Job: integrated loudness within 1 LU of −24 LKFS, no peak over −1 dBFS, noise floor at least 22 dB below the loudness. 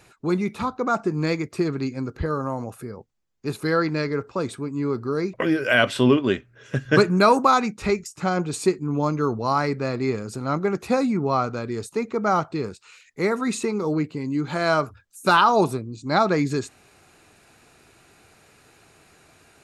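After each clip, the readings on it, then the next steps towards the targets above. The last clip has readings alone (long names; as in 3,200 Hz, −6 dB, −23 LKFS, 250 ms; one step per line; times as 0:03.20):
integrated loudness −23.0 LKFS; sample peak −3.5 dBFS; target loudness −24.0 LKFS
→ level −1 dB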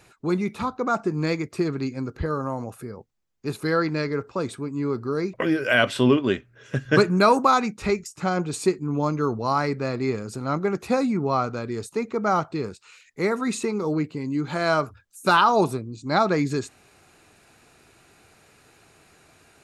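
integrated loudness −24.0 LKFS; sample peak −4.5 dBFS; background noise floor −57 dBFS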